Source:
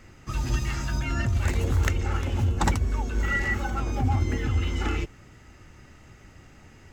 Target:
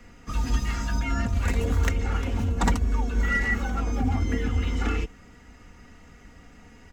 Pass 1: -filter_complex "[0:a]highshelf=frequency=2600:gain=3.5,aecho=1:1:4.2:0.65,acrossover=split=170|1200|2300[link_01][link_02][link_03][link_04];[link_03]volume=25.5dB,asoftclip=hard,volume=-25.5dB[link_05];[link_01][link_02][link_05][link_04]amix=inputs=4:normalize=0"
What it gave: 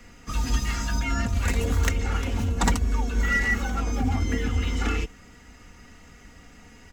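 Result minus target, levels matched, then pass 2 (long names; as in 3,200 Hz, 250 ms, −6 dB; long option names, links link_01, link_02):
4,000 Hz band +3.5 dB
-filter_complex "[0:a]highshelf=frequency=2600:gain=-3,aecho=1:1:4.2:0.65,acrossover=split=170|1200|2300[link_01][link_02][link_03][link_04];[link_03]volume=25.5dB,asoftclip=hard,volume=-25.5dB[link_05];[link_01][link_02][link_05][link_04]amix=inputs=4:normalize=0"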